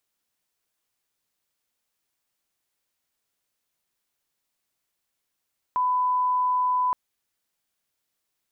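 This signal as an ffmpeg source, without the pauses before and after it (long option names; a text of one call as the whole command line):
ffmpeg -f lavfi -i "sine=frequency=1000:duration=1.17:sample_rate=44100,volume=-1.94dB" out.wav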